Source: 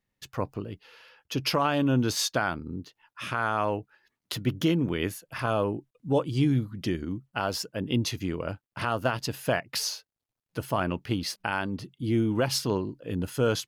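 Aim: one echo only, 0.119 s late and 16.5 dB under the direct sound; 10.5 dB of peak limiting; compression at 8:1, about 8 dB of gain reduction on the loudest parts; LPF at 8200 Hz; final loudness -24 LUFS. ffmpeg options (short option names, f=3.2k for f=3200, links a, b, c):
-af "lowpass=8.2k,acompressor=threshold=-28dB:ratio=8,alimiter=level_in=1dB:limit=-24dB:level=0:latency=1,volume=-1dB,aecho=1:1:119:0.15,volume=12.5dB"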